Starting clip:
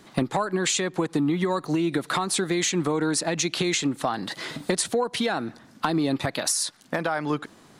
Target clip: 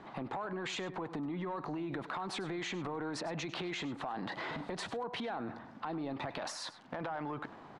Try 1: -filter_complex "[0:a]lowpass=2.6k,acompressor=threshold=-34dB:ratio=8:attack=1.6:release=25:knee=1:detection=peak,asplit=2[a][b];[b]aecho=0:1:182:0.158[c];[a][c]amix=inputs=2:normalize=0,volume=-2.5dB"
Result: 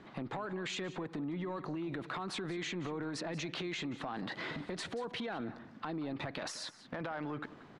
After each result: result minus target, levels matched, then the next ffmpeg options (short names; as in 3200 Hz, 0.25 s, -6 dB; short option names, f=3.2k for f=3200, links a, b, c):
echo 82 ms late; 1000 Hz band -3.0 dB
-filter_complex "[0:a]lowpass=2.6k,acompressor=threshold=-34dB:ratio=8:attack=1.6:release=25:knee=1:detection=peak,asplit=2[a][b];[b]aecho=0:1:100:0.158[c];[a][c]amix=inputs=2:normalize=0,volume=-2.5dB"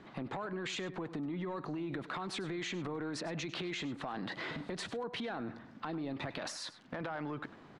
1000 Hz band -3.0 dB
-filter_complex "[0:a]lowpass=2.6k,equalizer=f=850:w=1.3:g=9,acompressor=threshold=-34dB:ratio=8:attack=1.6:release=25:knee=1:detection=peak,asplit=2[a][b];[b]aecho=0:1:100:0.158[c];[a][c]amix=inputs=2:normalize=0,volume=-2.5dB"